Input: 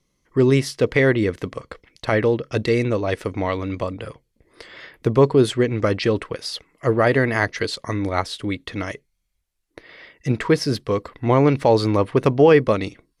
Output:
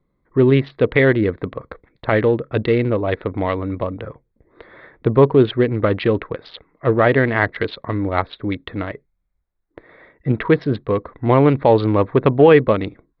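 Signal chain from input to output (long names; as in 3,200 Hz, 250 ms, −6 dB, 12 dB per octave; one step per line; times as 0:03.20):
adaptive Wiener filter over 15 samples
elliptic low-pass filter 3,800 Hz, stop band 50 dB
level +3.5 dB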